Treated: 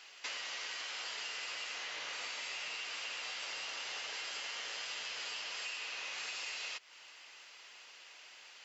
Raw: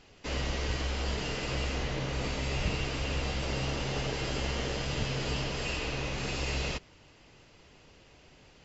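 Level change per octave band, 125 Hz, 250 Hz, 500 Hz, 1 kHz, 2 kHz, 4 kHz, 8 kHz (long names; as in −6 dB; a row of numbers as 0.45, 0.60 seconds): below −40 dB, −30.0 dB, −18.5 dB, −8.5 dB, −3.5 dB, −3.0 dB, can't be measured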